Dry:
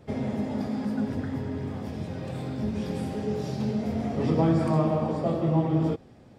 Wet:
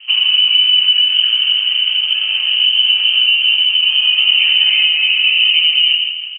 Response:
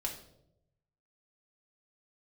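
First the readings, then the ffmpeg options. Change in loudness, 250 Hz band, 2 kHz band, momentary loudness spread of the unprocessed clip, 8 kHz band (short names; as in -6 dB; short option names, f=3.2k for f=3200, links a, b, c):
+18.5 dB, under -35 dB, +30.5 dB, 11 LU, under -15 dB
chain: -filter_complex "[1:a]atrim=start_sample=2205,afade=t=out:st=0.22:d=0.01,atrim=end_sample=10143[a];[0:a][a]afir=irnorm=-1:irlink=0,asplit=2[b][c];[c]adynamicsmooth=sensitivity=8:basefreq=1.6k,volume=-2dB[d];[b][d]amix=inputs=2:normalize=0,equalizer=f=260:t=o:w=2.6:g=9.5,lowpass=f=2.7k:t=q:w=0.5098,lowpass=f=2.7k:t=q:w=0.6013,lowpass=f=2.7k:t=q:w=0.9,lowpass=f=2.7k:t=q:w=2.563,afreqshift=-3200,acompressor=threshold=-14dB:ratio=6,aecho=1:1:164|328|492|656|820|984:0.335|0.178|0.0941|0.0499|0.0264|0.014,asubboost=boost=5:cutoff=78,volume=4.5dB"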